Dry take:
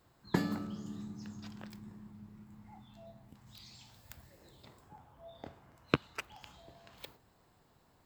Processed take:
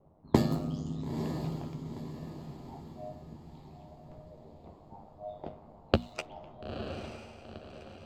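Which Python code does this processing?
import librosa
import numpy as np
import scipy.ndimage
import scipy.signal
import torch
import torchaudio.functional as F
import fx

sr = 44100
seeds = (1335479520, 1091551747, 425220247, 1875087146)

p1 = fx.graphic_eq_15(x, sr, hz=(160, 630, 1600), db=(4, 7, -12))
p2 = fx.env_lowpass(p1, sr, base_hz=760.0, full_db=-34.0)
p3 = p2 * np.sin(2.0 * np.pi * 51.0 * np.arange(len(p2)) / sr)
p4 = fx.hum_notches(p3, sr, base_hz=60, count=4)
p5 = fx.doubler(p4, sr, ms=13.0, db=-9.0)
p6 = p5 + fx.echo_diffused(p5, sr, ms=932, feedback_pct=44, wet_db=-7.5, dry=0)
y = F.gain(torch.from_numpy(p6), 7.5).numpy()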